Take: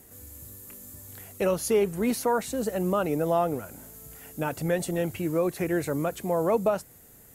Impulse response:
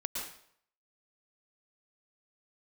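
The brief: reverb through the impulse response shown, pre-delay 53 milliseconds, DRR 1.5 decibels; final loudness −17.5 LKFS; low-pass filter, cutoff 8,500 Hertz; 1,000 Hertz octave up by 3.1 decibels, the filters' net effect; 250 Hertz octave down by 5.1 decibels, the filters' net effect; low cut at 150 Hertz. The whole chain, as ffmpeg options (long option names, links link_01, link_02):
-filter_complex "[0:a]highpass=150,lowpass=8500,equalizer=frequency=250:width_type=o:gain=-7,equalizer=frequency=1000:width_type=o:gain=4.5,asplit=2[link_01][link_02];[1:a]atrim=start_sample=2205,adelay=53[link_03];[link_02][link_03]afir=irnorm=-1:irlink=0,volume=-4dB[link_04];[link_01][link_04]amix=inputs=2:normalize=0,volume=8.5dB"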